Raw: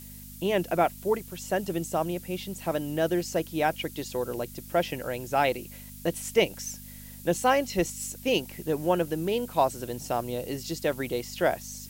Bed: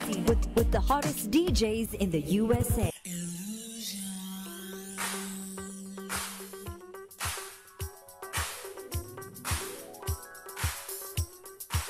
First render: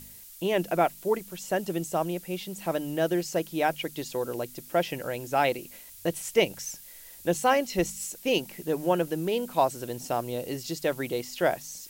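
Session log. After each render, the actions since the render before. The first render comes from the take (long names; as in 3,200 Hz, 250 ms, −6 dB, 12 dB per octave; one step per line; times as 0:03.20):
hum removal 50 Hz, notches 5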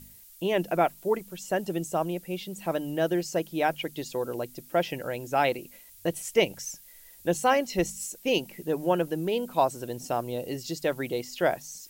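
broadband denoise 6 dB, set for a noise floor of −48 dBFS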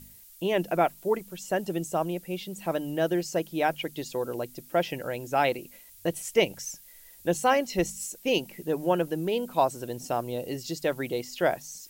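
no processing that can be heard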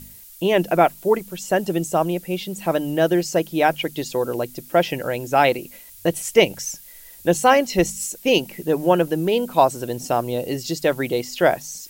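level +8 dB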